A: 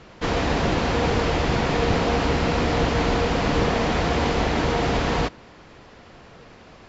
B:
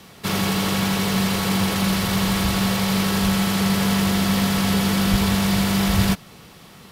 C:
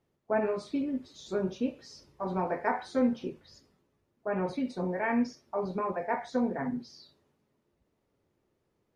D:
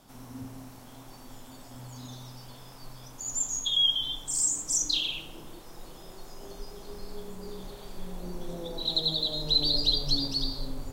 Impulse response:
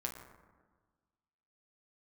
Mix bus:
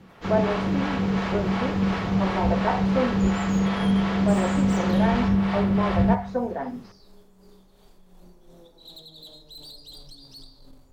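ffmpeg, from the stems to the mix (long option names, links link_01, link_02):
-filter_complex "[0:a]volume=-13.5dB[link_01];[1:a]lowpass=1900,acrossover=split=430[link_02][link_03];[link_02]aeval=exprs='val(0)*(1-0.7/2+0.7/2*cos(2*PI*2.8*n/s))':channel_layout=same[link_04];[link_03]aeval=exprs='val(0)*(1-0.7/2-0.7/2*cos(2*PI*2.8*n/s))':channel_layout=same[link_05];[link_04][link_05]amix=inputs=2:normalize=0,volume=-2.5dB,asplit=2[link_06][link_07];[link_07]volume=-10.5dB[link_08];[2:a]equalizer=frequency=670:width=0.49:gain=14,volume=-7.5dB[link_09];[3:a]tremolo=f=2.8:d=0.57,asoftclip=type=tanh:threshold=-28.5dB,volume=-14.5dB,asplit=2[link_10][link_11];[link_11]volume=-4dB[link_12];[4:a]atrim=start_sample=2205[link_13];[link_08][link_12]amix=inputs=2:normalize=0[link_14];[link_14][link_13]afir=irnorm=-1:irlink=0[link_15];[link_01][link_06][link_09][link_10][link_15]amix=inputs=5:normalize=0"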